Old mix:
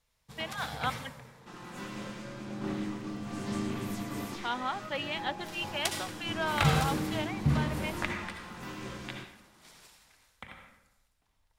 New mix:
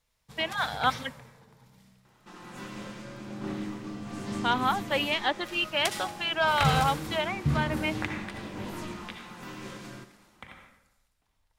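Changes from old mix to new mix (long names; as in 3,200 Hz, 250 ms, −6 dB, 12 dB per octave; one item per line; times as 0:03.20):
speech +7.5 dB
second sound: entry +0.80 s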